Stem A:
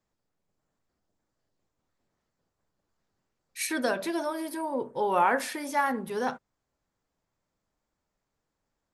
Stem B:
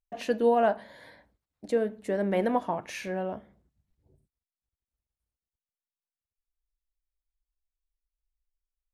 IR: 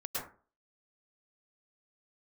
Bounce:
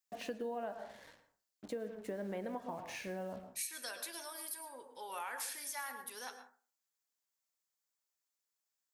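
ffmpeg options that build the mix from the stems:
-filter_complex "[0:a]aderivative,volume=0.944,asplit=2[s0][s1];[s1]volume=0.299[s2];[1:a]acrusher=bits=7:mix=0:aa=0.5,volume=0.398,asplit=2[s3][s4];[s4]volume=0.237[s5];[2:a]atrim=start_sample=2205[s6];[s2][s5]amix=inputs=2:normalize=0[s7];[s7][s6]afir=irnorm=-1:irlink=0[s8];[s0][s3][s8]amix=inputs=3:normalize=0,acompressor=threshold=0.0126:ratio=6"

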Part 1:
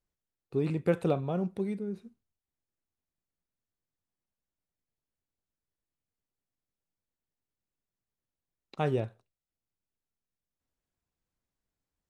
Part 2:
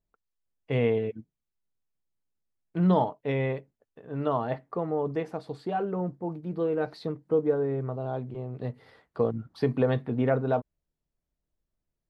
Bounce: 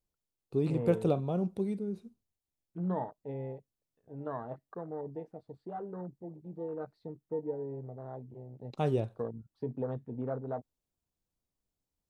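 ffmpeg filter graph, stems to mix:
-filter_complex "[0:a]equalizer=f=1800:w=1.1:g=-8.5,volume=1[s0];[1:a]afwtdn=0.0251,volume=0.282[s1];[s0][s1]amix=inputs=2:normalize=0"

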